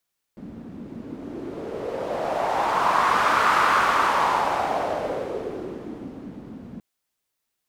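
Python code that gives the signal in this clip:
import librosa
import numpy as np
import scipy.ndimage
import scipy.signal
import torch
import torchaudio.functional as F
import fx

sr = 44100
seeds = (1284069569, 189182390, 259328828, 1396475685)

y = fx.wind(sr, seeds[0], length_s=6.43, low_hz=220.0, high_hz=1200.0, q=3.2, gusts=1, swing_db=19.5)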